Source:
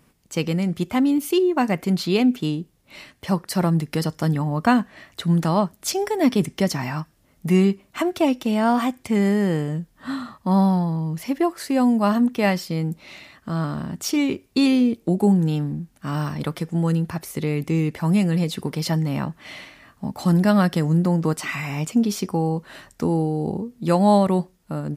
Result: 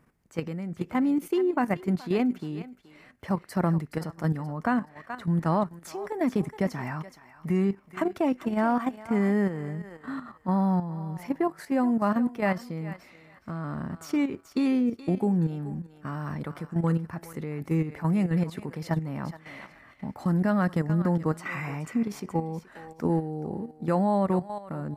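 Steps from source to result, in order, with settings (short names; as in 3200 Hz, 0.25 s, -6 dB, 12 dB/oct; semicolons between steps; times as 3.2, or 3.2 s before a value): resonant high shelf 2400 Hz -8 dB, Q 1.5; on a send: thinning echo 0.424 s, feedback 25%, high-pass 710 Hz, level -11 dB; on the sum: level quantiser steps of 10 dB; gain -3 dB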